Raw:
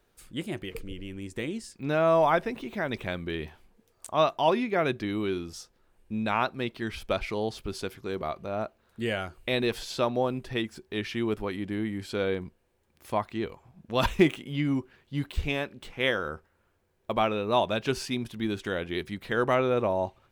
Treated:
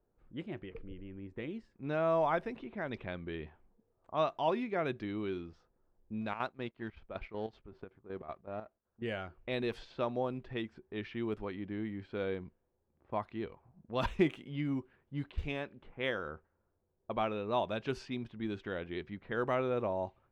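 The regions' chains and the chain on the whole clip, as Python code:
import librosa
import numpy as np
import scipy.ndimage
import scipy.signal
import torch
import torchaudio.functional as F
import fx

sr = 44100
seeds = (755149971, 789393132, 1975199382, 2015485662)

y = fx.chain(x, sr, fx.law_mismatch(coded='A'),
    fx.chopper(hz=5.3, depth_pct=65, duty_pct=65), at=(6.21, 9.02))
y = fx.env_lowpass(y, sr, base_hz=830.0, full_db=-23.0)
y = fx.lowpass(y, sr, hz=2800.0, slope=6)
y = y * 10.0 ** (-7.5 / 20.0)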